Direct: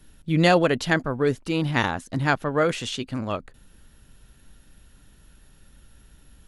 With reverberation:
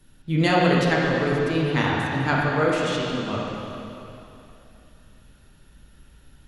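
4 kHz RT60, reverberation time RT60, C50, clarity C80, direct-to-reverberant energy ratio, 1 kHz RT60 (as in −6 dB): 2.7 s, 2.9 s, −1.5 dB, 0.0 dB, −4.0 dB, 2.9 s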